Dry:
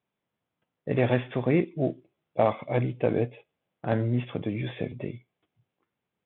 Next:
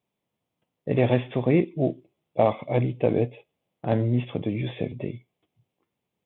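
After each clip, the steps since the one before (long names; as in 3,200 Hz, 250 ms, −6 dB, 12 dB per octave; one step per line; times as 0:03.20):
parametric band 1,500 Hz −9 dB 0.69 octaves
level +3 dB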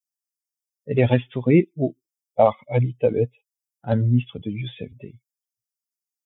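spectral dynamics exaggerated over time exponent 2
level +7 dB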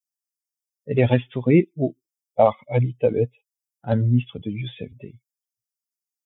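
no processing that can be heard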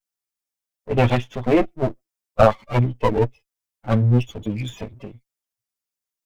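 lower of the sound and its delayed copy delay 9.3 ms
level +3 dB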